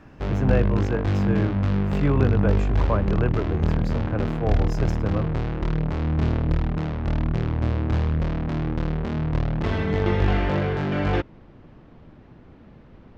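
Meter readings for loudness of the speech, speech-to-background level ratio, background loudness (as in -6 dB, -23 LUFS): -27.5 LUFS, -3.0 dB, -24.5 LUFS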